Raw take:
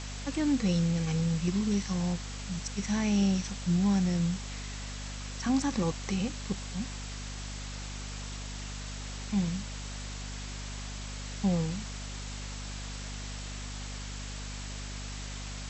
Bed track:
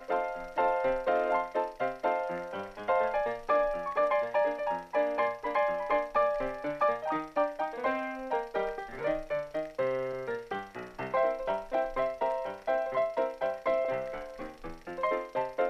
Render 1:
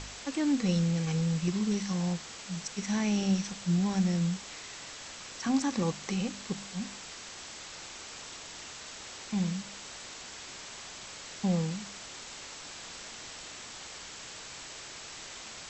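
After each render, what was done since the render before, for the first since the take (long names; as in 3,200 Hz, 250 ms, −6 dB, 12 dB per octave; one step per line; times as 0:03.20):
hum removal 50 Hz, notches 5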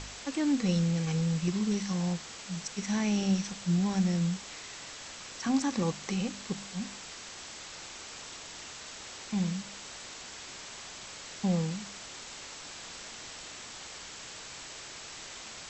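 no processing that can be heard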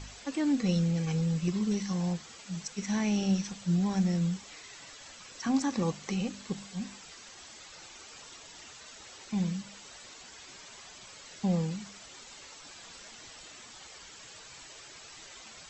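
broadband denoise 9 dB, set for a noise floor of −45 dBFS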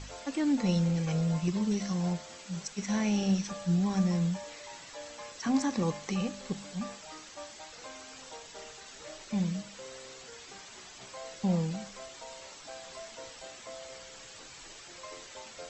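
mix in bed track −17.5 dB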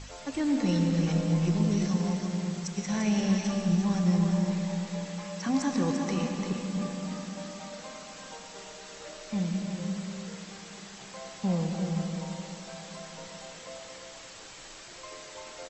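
single-tap delay 344 ms −6.5 dB
comb and all-pass reverb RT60 3.5 s, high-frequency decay 0.45×, pre-delay 70 ms, DRR 3.5 dB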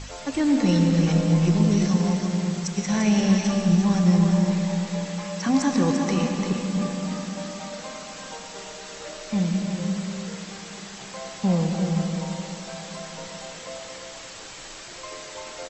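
level +6.5 dB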